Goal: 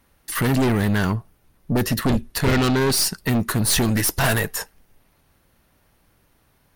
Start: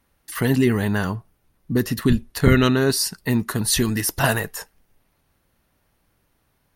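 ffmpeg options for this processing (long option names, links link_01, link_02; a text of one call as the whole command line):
ffmpeg -i in.wav -af "aeval=exprs='0.75*(cos(1*acos(clip(val(0)/0.75,-1,1)))-cos(1*PI/2))+0.15*(cos(6*acos(clip(val(0)/0.75,-1,1)))-cos(6*PI/2))':channel_layout=same,asoftclip=type=tanh:threshold=-18.5dB,volume=5.5dB" out.wav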